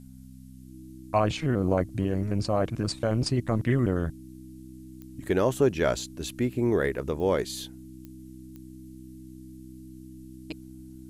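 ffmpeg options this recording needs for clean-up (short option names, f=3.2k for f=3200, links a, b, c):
-af "adeclick=t=4,bandreject=f=64.6:t=h:w=4,bandreject=f=129.2:t=h:w=4,bandreject=f=193.8:t=h:w=4,bandreject=f=258.4:t=h:w=4,bandreject=f=320:w=30,agate=range=-21dB:threshold=-37dB"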